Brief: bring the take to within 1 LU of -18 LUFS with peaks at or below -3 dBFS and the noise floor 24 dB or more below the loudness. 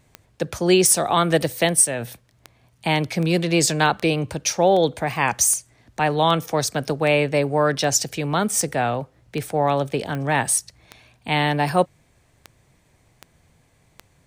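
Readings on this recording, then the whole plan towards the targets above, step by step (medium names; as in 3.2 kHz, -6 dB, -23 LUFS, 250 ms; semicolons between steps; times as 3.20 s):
clicks found 19; loudness -20.5 LUFS; peak level -3.0 dBFS; loudness target -18.0 LUFS
-> de-click; trim +2.5 dB; peak limiter -3 dBFS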